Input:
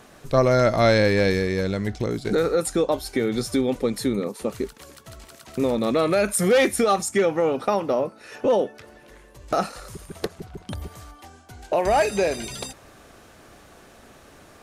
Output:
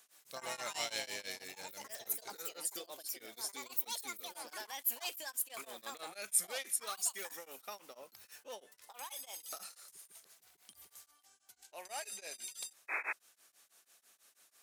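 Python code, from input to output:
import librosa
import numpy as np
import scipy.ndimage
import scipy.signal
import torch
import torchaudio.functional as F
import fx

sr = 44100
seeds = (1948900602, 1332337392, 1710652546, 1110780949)

y = fx.echo_pitch(x, sr, ms=111, semitones=5, count=2, db_per_echo=-3.0)
y = fx.spec_paint(y, sr, seeds[0], shape='noise', start_s=12.88, length_s=0.25, low_hz=280.0, high_hz=2600.0, level_db=-17.0)
y = np.diff(y, prepend=0.0)
y = y * np.abs(np.cos(np.pi * 6.1 * np.arange(len(y)) / sr))
y = F.gain(torch.from_numpy(y), -5.5).numpy()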